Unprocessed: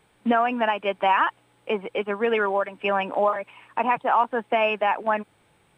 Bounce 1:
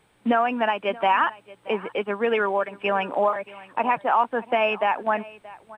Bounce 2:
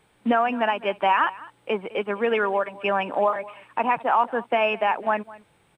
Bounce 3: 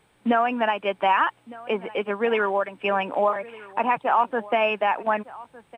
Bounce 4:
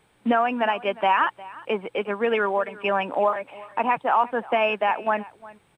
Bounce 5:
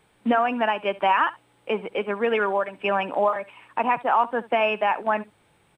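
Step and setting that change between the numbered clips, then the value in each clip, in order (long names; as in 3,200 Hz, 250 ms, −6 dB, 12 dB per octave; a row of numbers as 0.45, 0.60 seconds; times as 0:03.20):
single-tap delay, delay time: 627, 206, 1,208, 356, 70 milliseconds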